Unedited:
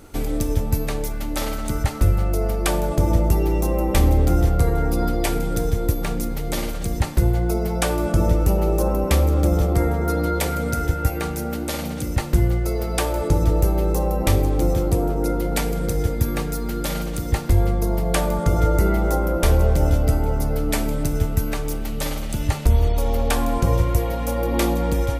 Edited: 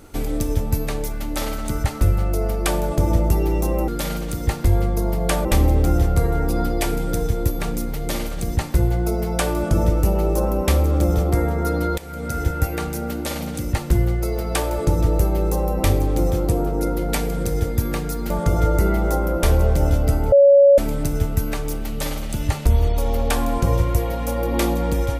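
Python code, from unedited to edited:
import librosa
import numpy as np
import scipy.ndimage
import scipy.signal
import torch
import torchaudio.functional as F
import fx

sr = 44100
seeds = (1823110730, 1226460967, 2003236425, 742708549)

y = fx.edit(x, sr, fx.fade_in_from(start_s=10.41, length_s=0.46, floor_db=-21.5),
    fx.move(start_s=16.73, length_s=1.57, to_s=3.88),
    fx.bleep(start_s=20.32, length_s=0.46, hz=561.0, db=-7.5), tone=tone)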